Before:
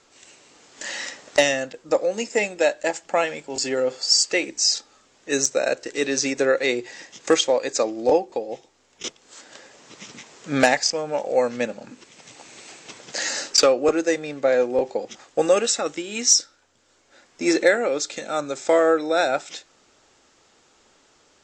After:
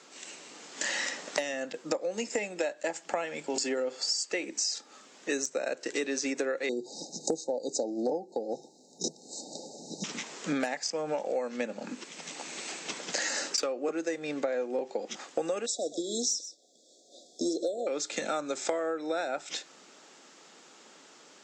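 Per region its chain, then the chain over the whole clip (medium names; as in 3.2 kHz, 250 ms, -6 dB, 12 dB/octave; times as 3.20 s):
6.69–10.04 s: brick-wall FIR band-stop 900–3700 Hz + peaking EQ 68 Hz +14 dB 2.9 oct
15.66–17.87 s: brick-wall FIR band-stop 760–3300 Hz + tone controls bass -10 dB, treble -1 dB + delay 126 ms -17.5 dB
whole clip: Chebyshev high-pass 160 Hz, order 5; dynamic bell 4.3 kHz, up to -4 dB, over -34 dBFS, Q 0.83; compression 12:1, threshold -32 dBFS; trim +4 dB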